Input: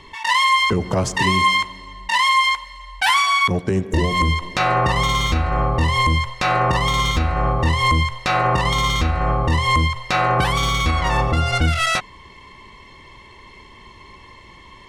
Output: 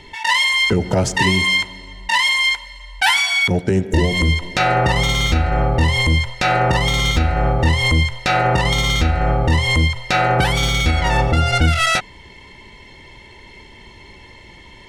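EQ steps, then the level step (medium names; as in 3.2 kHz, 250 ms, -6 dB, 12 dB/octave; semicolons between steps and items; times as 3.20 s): Butterworth band-stop 1.1 kHz, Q 4.6; +3.0 dB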